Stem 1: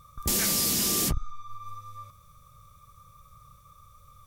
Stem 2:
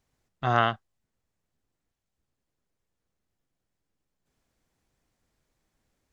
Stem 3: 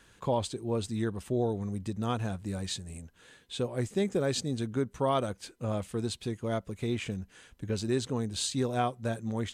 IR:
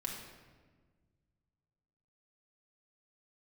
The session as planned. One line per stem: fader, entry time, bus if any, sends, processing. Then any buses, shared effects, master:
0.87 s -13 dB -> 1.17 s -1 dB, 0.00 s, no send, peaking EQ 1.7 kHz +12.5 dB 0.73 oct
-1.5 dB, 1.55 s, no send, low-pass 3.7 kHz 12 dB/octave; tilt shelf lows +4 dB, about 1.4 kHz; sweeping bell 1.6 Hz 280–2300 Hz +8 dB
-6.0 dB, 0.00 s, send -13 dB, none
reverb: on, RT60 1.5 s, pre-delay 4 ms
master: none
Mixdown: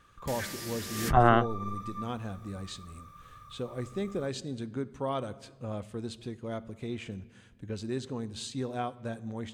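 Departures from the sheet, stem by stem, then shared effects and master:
stem 2: entry 1.55 s -> 0.70 s; master: extra treble shelf 6.8 kHz -8 dB

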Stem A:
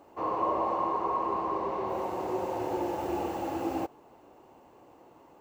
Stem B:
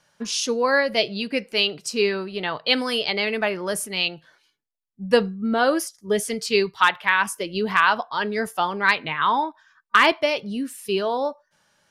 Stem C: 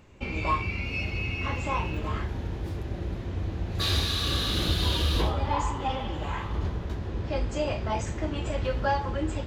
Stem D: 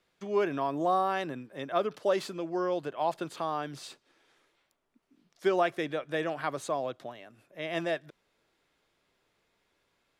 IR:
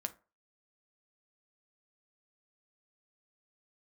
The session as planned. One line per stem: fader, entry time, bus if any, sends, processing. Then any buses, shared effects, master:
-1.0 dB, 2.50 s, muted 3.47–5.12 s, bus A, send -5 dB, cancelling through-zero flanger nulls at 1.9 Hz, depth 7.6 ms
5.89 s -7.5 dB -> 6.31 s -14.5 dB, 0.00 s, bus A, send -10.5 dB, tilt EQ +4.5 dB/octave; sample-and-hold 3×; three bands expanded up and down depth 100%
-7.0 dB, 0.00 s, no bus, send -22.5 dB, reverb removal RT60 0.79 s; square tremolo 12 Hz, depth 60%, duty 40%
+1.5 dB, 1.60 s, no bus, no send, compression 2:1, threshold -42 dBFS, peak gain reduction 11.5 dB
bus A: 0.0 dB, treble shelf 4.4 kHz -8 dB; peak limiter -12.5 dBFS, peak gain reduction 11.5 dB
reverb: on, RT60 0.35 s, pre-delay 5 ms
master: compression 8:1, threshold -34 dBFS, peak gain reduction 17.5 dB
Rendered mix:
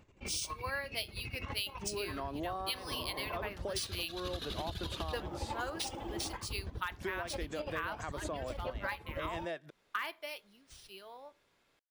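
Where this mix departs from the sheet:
stem A -1.0 dB -> -11.0 dB; stem B -7.5 dB -> -14.5 dB

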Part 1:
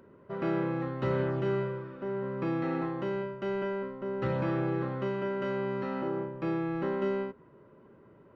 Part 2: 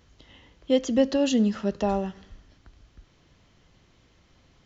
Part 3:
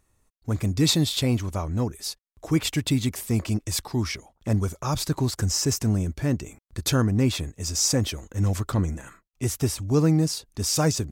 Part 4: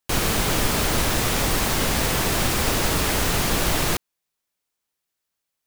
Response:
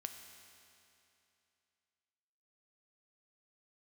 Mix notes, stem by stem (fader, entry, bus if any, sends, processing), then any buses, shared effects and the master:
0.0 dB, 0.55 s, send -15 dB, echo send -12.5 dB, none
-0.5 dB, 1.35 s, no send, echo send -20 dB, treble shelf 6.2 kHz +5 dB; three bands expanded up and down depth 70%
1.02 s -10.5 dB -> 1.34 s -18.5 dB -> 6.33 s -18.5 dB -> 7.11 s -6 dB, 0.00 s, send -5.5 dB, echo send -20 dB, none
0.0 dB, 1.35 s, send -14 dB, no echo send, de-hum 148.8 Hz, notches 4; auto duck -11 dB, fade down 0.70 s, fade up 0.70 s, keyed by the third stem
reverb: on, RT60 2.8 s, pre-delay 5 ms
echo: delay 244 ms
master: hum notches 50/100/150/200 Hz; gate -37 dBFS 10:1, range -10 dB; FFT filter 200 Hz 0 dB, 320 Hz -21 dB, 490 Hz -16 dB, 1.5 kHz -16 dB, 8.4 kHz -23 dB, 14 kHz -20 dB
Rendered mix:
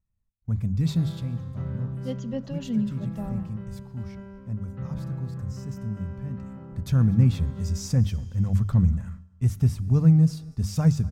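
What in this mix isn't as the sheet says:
stem 3 -10.5 dB -> -0.5 dB; stem 4: muted

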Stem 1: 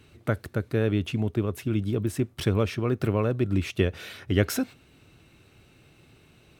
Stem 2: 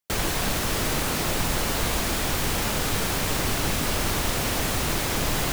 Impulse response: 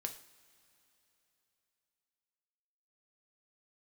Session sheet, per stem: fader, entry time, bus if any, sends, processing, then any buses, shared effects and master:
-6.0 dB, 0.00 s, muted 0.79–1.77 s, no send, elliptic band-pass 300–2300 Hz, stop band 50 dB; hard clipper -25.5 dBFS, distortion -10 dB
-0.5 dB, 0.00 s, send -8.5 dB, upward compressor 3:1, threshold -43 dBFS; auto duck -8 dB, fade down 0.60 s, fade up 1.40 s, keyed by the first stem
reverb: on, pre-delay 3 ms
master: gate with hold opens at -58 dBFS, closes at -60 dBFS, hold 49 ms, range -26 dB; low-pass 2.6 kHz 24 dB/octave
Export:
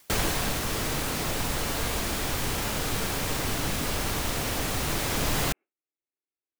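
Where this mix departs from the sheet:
stem 1 -6.0 dB -> -17.0 dB; master: missing low-pass 2.6 kHz 24 dB/octave

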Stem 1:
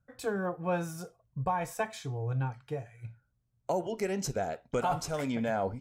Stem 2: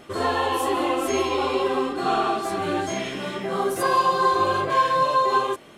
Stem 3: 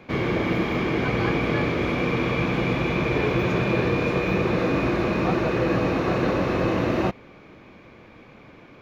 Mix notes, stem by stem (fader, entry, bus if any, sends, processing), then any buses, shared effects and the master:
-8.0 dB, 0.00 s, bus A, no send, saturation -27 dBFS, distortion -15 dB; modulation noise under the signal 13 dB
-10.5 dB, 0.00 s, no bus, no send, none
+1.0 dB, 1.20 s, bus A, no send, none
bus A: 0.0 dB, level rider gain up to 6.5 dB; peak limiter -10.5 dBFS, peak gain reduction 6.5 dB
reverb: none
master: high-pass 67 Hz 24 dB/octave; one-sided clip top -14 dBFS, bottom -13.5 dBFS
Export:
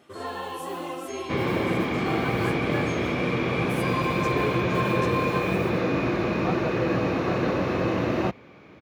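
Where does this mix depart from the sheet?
stem 1 -8.0 dB -> -15.5 dB; stem 3 +1.0 dB -> -8.5 dB; master: missing one-sided clip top -14 dBFS, bottom -13.5 dBFS

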